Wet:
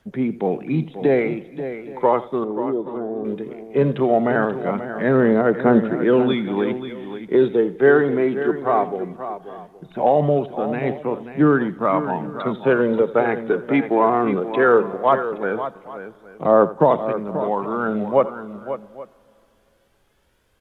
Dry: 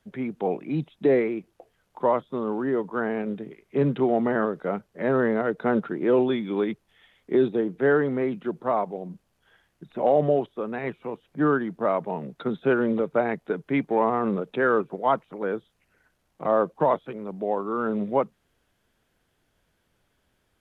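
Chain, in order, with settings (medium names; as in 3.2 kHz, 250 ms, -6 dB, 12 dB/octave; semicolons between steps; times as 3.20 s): phaser 0.18 Hz, delay 3.1 ms, feedback 38%; 2.44–3.25 s: four-pole ladder low-pass 830 Hz, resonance 20%; multi-tap echo 83/535/821 ms -17/-11/-20 dB; on a send at -23 dB: reverberation RT60 3.1 s, pre-delay 58 ms; on the sum: trim +5 dB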